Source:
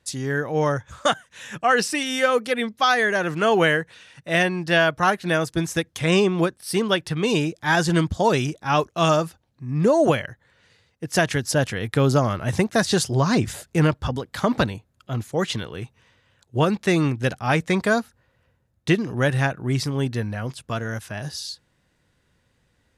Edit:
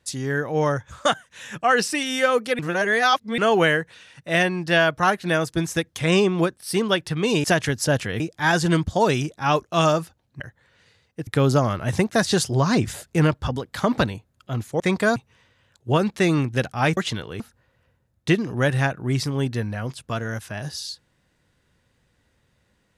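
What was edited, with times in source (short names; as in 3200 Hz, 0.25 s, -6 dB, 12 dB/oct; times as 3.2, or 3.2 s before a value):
2.59–3.38 reverse
9.64–10.24 cut
11.11–11.87 move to 7.44
15.4–15.83 swap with 17.64–18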